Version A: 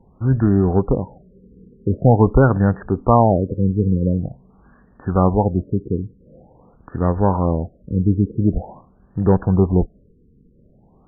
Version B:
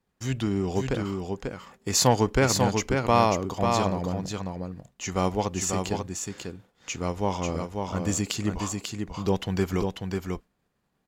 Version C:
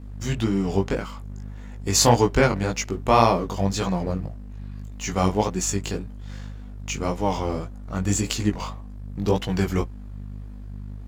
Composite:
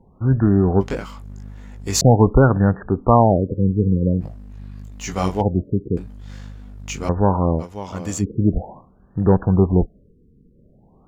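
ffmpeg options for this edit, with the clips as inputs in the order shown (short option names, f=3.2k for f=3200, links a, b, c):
-filter_complex "[2:a]asplit=3[a][b][c];[0:a]asplit=5[d][e][f][g][h];[d]atrim=end=0.812[i];[a]atrim=start=0.808:end=2.012[j];[e]atrim=start=2.008:end=4.22[k];[b]atrim=start=4.2:end=5.42[l];[f]atrim=start=5.4:end=5.972[m];[c]atrim=start=5.968:end=7.092[n];[g]atrim=start=7.088:end=7.64[o];[1:a]atrim=start=7.58:end=8.25[p];[h]atrim=start=8.19[q];[i][j]acrossfade=d=0.004:c1=hsin:c2=hsin[r];[r][k]acrossfade=d=0.004:c1=hsin:c2=hsin[s];[s][l]acrossfade=d=0.02:c1=tri:c2=tri[t];[t][m]acrossfade=d=0.02:c1=tri:c2=tri[u];[u][n]acrossfade=d=0.004:c1=hsin:c2=hsin[v];[v][o]acrossfade=d=0.004:c1=hsin:c2=hsin[w];[w][p]acrossfade=d=0.06:c1=tri:c2=tri[x];[x][q]acrossfade=d=0.06:c1=tri:c2=tri"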